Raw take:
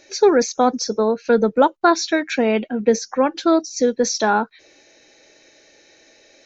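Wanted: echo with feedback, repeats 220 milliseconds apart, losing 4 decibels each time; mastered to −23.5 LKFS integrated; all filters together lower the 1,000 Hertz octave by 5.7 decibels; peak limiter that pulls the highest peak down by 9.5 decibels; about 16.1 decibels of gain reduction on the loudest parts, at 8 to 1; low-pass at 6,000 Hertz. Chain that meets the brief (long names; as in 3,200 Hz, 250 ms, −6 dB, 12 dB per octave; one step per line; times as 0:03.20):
low-pass filter 6,000 Hz
parametric band 1,000 Hz −8 dB
downward compressor 8 to 1, threshold −28 dBFS
brickwall limiter −25.5 dBFS
repeating echo 220 ms, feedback 63%, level −4 dB
level +10 dB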